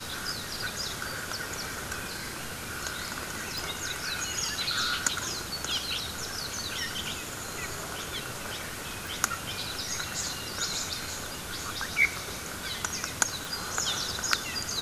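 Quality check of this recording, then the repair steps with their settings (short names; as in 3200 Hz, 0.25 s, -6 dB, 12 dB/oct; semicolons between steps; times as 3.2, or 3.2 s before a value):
3.58 pop
9.07 pop
13.45 pop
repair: de-click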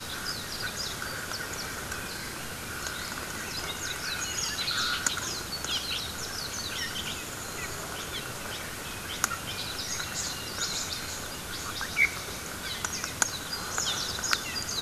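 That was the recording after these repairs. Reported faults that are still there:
none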